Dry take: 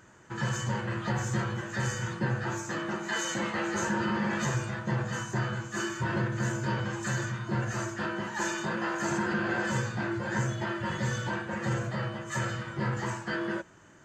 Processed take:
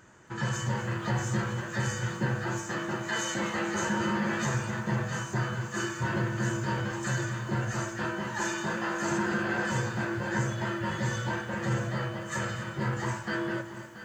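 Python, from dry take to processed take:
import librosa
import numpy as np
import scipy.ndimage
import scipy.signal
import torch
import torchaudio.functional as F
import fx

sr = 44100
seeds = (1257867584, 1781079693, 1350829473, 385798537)

p1 = x + fx.echo_single(x, sr, ms=680, db=-13.5, dry=0)
y = fx.echo_crushed(p1, sr, ms=248, feedback_pct=55, bits=9, wet_db=-12.5)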